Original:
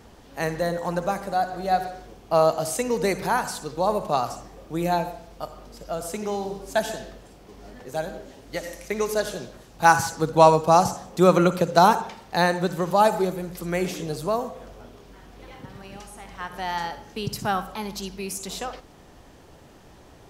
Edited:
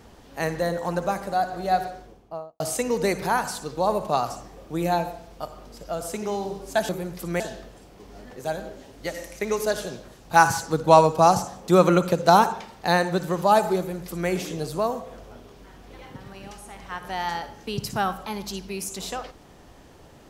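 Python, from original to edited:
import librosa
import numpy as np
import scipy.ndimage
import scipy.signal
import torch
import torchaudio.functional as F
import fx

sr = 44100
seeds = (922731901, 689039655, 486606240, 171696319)

y = fx.studio_fade_out(x, sr, start_s=1.8, length_s=0.8)
y = fx.edit(y, sr, fx.duplicate(start_s=13.27, length_s=0.51, to_s=6.89), tone=tone)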